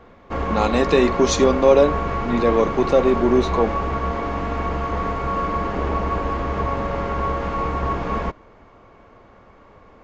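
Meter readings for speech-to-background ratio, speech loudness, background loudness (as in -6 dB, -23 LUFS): 5.5 dB, -19.0 LUFS, -24.5 LUFS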